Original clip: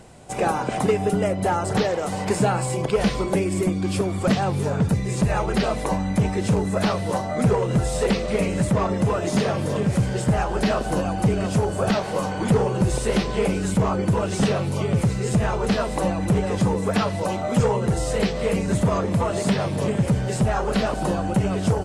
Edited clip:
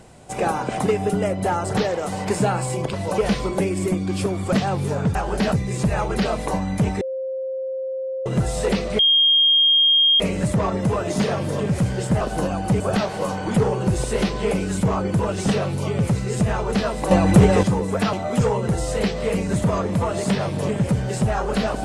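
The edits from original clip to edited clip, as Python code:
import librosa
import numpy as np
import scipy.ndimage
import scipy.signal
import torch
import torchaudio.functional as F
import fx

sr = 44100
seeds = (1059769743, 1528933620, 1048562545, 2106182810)

y = fx.edit(x, sr, fx.bleep(start_s=6.39, length_s=1.25, hz=527.0, db=-24.0),
    fx.insert_tone(at_s=8.37, length_s=1.21, hz=3230.0, db=-12.5),
    fx.move(start_s=10.38, length_s=0.37, to_s=4.9),
    fx.cut(start_s=11.34, length_s=0.4),
    fx.clip_gain(start_s=16.05, length_s=0.52, db=8.0),
    fx.move(start_s=17.07, length_s=0.25, to_s=2.93), tone=tone)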